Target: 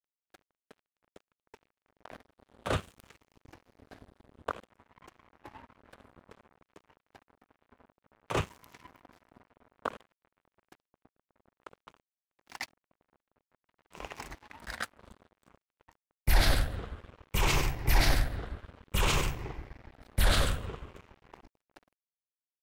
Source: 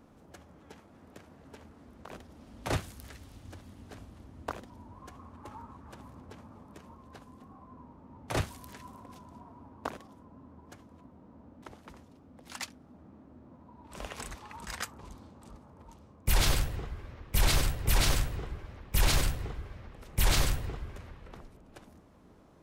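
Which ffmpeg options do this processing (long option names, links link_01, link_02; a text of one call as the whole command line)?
ffmpeg -i in.wav -af "afftfilt=real='re*pow(10,7/40*sin(2*PI*(0.74*log(max(b,1)*sr/1024/100)/log(2)-(-0.56)*(pts-256)/sr)))':imag='im*pow(10,7/40*sin(2*PI*(0.74*log(max(b,1)*sr/1024/100)/log(2)-(-0.56)*(pts-256)/sr)))':win_size=1024:overlap=0.75,aeval=exprs='sgn(val(0))*max(abs(val(0))-0.00501,0)':channel_layout=same,bass=frequency=250:gain=-3,treble=frequency=4000:gain=-7,volume=2.5dB" out.wav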